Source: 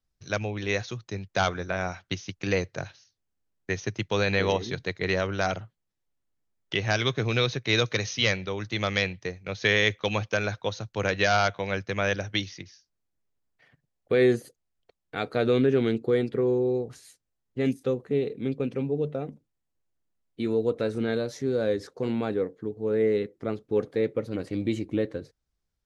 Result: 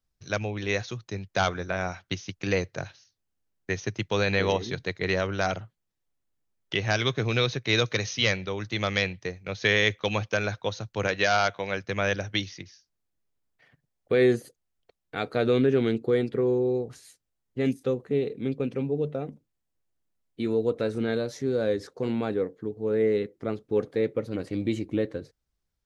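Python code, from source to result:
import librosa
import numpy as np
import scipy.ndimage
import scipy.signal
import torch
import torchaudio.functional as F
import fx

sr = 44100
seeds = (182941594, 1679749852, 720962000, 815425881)

y = fx.low_shelf(x, sr, hz=150.0, db=-8.5, at=(11.07, 11.84))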